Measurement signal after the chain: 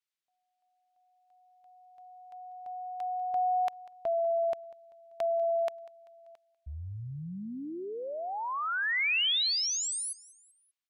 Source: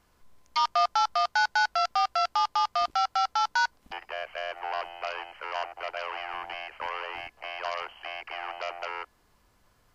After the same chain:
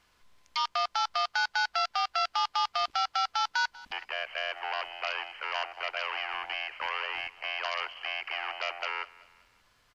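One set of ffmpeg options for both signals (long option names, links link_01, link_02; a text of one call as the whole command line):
ffmpeg -i in.wav -filter_complex "[0:a]equalizer=frequency=3000:width=0.41:gain=12,alimiter=limit=-12.5dB:level=0:latency=1:release=128,asplit=2[link_01][link_02];[link_02]aecho=0:1:194|388|582:0.0891|0.0419|0.0197[link_03];[link_01][link_03]amix=inputs=2:normalize=0,volume=-6.5dB" out.wav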